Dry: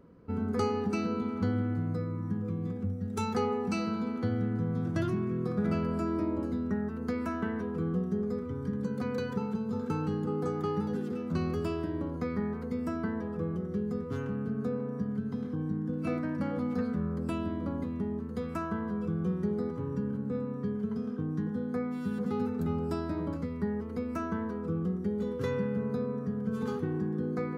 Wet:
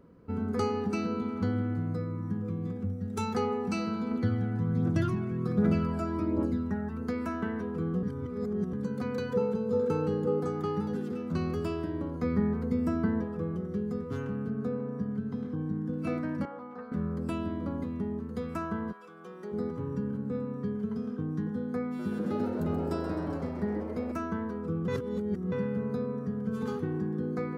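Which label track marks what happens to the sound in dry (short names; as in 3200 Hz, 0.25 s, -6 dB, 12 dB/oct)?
4.110000	7.020000	phaser 1.3 Hz, delay 1.5 ms, feedback 44%
8.030000	8.730000	reverse
9.330000	10.400000	bell 490 Hz +14 dB 0.28 oct
12.230000	13.240000	low shelf 350 Hz +7.5 dB
14.490000	15.760000	high shelf 4100 Hz -5.5 dB
16.450000	16.920000	band-pass 970 Hz, Q 1.5
18.910000	19.520000	HPF 1200 Hz -> 440 Hz
21.860000	24.120000	frequency-shifting echo 0.13 s, feedback 61%, per repeat +110 Hz, level -9 dB
24.880000	25.520000	reverse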